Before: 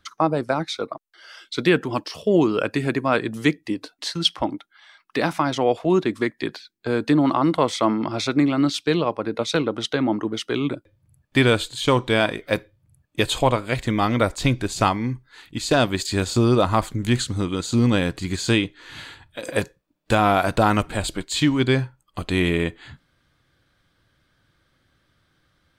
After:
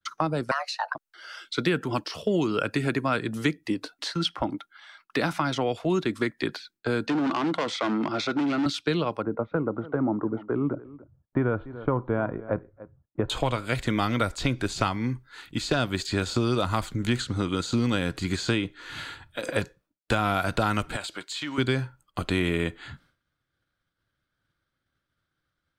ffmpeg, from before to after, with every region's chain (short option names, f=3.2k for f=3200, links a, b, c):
-filter_complex "[0:a]asettb=1/sr,asplit=3[a][b][c];[a]atrim=end=0.514[d];[b]atrim=start=0.51:end=0.95,asetpts=PTS-STARTPTS,afade=t=in:d=0.004:c=qsin,afade=t=out:st=0.436:d=0.004:c=qsin,equalizer=f=130:t=o:w=0.48:g=-12.5,afreqshift=410[e];[c]atrim=start=0.946[f];[d][e]acrossfade=d=0.004:c1=hsin:c2=qsin[g];[g][f]acrossfade=d=0.004:c1=qsin:c2=hsin,asettb=1/sr,asplit=3[h][i][j];[h]atrim=end=7.064[k];[i]atrim=start=7.06:end=8.66,asetpts=PTS-STARTPTS,afade=t=in:d=0.004:c=qsin,afade=t=out:st=1.596:d=0.004:c=qsin,volume=19dB,asoftclip=hard,volume=-19dB,highpass=170,lowpass=5.9k[l];[j]atrim=start=8.656[m];[k][l]acrossfade=d=0.004:c1=hsin:c2=qsin[n];[n][m]acrossfade=d=0.004:c1=qsin:c2=hsin,asettb=1/sr,asplit=3[o][p][q];[o]atrim=end=9.224[r];[p]atrim=start=9.22:end=13.3,asetpts=PTS-STARTPTS,afade=t=in:d=0.004:c=qsin,afade=t=out:st=4.076:d=0.004:c=qsin,lowpass=f=1.2k:w=0.5412,lowpass=f=1.2k:w=1.3066,aecho=1:1:290:0.0841,atrim=end_sample=179928[s];[q]atrim=start=13.296[t];[r][s]acrossfade=d=0.004:c1=hsin:c2=qsin[u];[u][t]acrossfade=d=0.004:c1=qsin:c2=hsin,asettb=1/sr,asplit=3[v][w][x];[v]atrim=end=20.964[y];[w]atrim=start=20.96:end=21.58,asetpts=PTS-STARTPTS,afade=t=in:d=0.004:c=qsin,afade=t=out:st=0.616:d=0.004:c=qsin,highpass=f=990:p=1,acompressor=threshold=-30dB:ratio=2.5:attack=3.2:release=140:knee=1:detection=peak[z];[x]atrim=start=21.576[aa];[y][z]acrossfade=d=0.004:c1=hsin:c2=qsin[ab];[ab][aa]acrossfade=d=0.004:c1=qsin:c2=hsin,equalizer=f=1.4k:w=6.5:g=7,acrossover=split=200|2200|6000[ac][ad][ae][af];[ac]acompressor=threshold=-29dB:ratio=4[ag];[ad]acompressor=threshold=-25dB:ratio=4[ah];[ae]acompressor=threshold=-33dB:ratio=4[ai];[af]acompressor=threshold=-48dB:ratio=4[aj];[ag][ah][ai][aj]amix=inputs=4:normalize=0,agate=range=-33dB:threshold=-53dB:ratio=3:detection=peak"